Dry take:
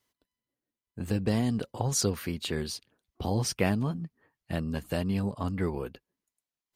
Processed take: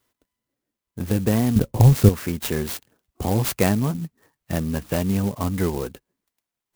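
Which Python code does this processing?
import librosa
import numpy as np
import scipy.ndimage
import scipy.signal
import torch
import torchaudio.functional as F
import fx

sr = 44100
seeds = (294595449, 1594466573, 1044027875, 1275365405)

y = fx.riaa(x, sr, side='playback', at=(1.56, 2.09))
y = fx.clock_jitter(y, sr, seeds[0], jitter_ms=0.064)
y = F.gain(torch.from_numpy(y), 7.0).numpy()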